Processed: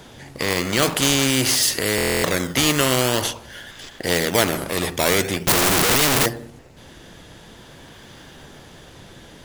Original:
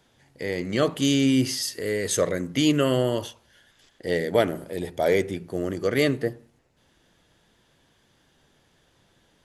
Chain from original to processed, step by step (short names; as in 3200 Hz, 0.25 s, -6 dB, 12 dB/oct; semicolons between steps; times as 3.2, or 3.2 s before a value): 5.47–6.26 infinite clipping; in parallel at -10 dB: decimation with a swept rate 16×, swing 160% 0.46 Hz; on the sum: stuck buffer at 1.96, samples 1024, times 11; spectral compressor 2:1; gain +5 dB